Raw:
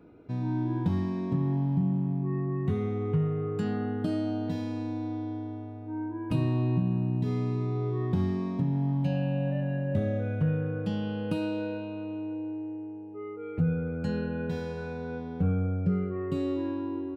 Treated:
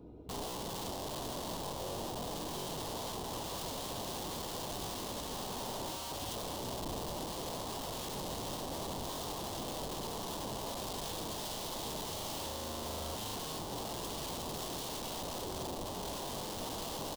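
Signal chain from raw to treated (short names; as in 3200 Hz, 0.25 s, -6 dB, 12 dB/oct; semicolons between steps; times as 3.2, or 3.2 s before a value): octaver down 2 oct, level -2 dB; feedback echo 0.756 s, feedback 32%, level -7.5 dB; compressor 6:1, threshold -31 dBFS, peak gain reduction 11.5 dB; dynamic EQ 1100 Hz, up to +7 dB, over -59 dBFS, Q 1.2; wrapped overs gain 35 dB; band shelf 1800 Hz -13.5 dB 1.2 oct; gain +1 dB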